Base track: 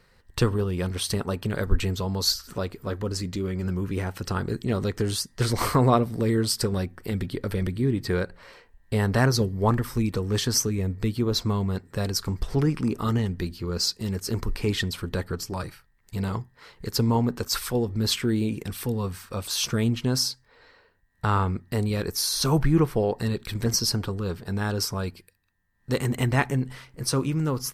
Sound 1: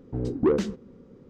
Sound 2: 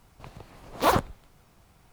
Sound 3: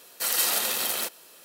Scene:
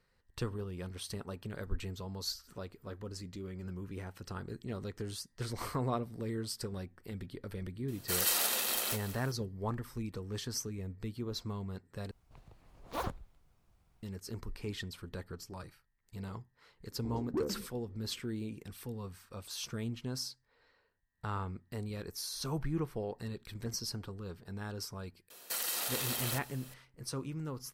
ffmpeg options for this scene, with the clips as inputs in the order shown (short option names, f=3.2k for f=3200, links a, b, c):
-filter_complex "[3:a]asplit=2[a][b];[0:a]volume=-14.5dB[c];[a]aecho=1:1:188|376|564:0.2|0.0638|0.0204[d];[2:a]lowshelf=f=85:g=11.5[e];[b]acompressor=threshold=-28dB:ratio=6:attack=3.2:release=140:knee=1:detection=peak[f];[c]asplit=2[g][h];[g]atrim=end=12.114[i];[e]atrim=end=1.92,asetpts=PTS-STARTPTS,volume=-16dB[j];[h]atrim=start=14.026[k];[d]atrim=end=1.44,asetpts=PTS-STARTPTS,volume=-6dB,afade=t=in:d=0.004:c=hsin,afade=t=out:st=1.436:d=0.004:c=hsin,adelay=7880[l];[1:a]atrim=end=1.29,asetpts=PTS-STARTPTS,volume=-13dB,afade=t=in:d=0.004:c=hsin,afade=t=out:st=1.286:d=0.004:c=hsin,adelay=16910[m];[f]atrim=end=1.44,asetpts=PTS-STARTPTS,volume=-3.5dB,afade=t=in:d=0.004:c=hsin,afade=t=out:st=1.436:d=0.004:c=hsin,adelay=25300[n];[i][j]acrossfade=d=0.004:c1=hsin:c2=hsin[o];[o][k]acrossfade=d=0.004:c1=hsin:c2=hsin[p];[p][l][m][n]amix=inputs=4:normalize=0"